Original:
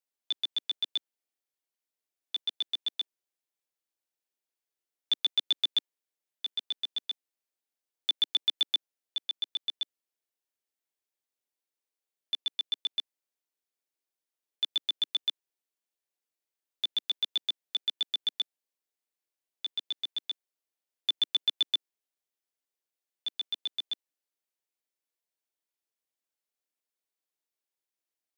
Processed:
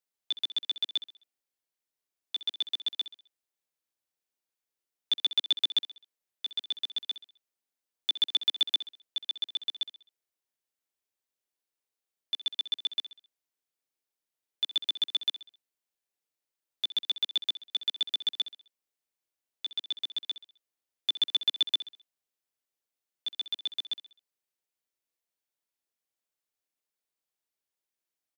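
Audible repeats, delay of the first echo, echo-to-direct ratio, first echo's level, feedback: 3, 65 ms, -13.5 dB, -14.5 dB, 45%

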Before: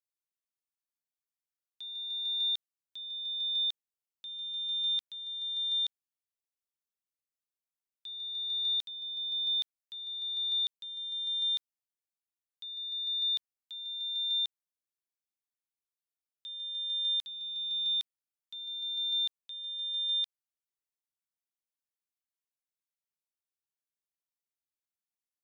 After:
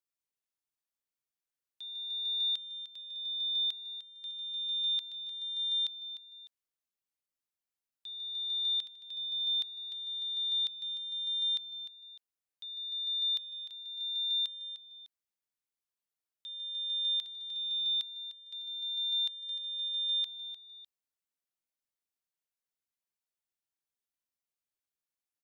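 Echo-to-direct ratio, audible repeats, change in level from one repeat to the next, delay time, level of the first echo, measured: -11.5 dB, 2, -8.0 dB, 302 ms, -12.0 dB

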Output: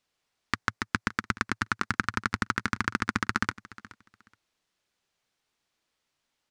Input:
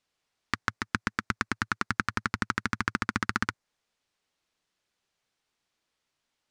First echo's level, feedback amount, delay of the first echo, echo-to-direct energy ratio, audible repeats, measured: -19.5 dB, 20%, 423 ms, -19.5 dB, 2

